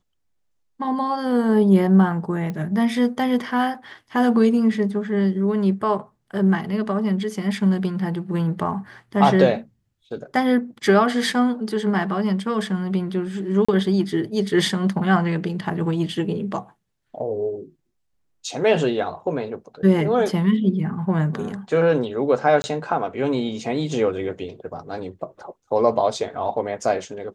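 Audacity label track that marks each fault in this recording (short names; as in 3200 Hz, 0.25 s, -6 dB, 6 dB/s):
2.500000	2.500000	pop -18 dBFS
13.650000	13.690000	gap 35 ms
22.620000	22.640000	gap 20 ms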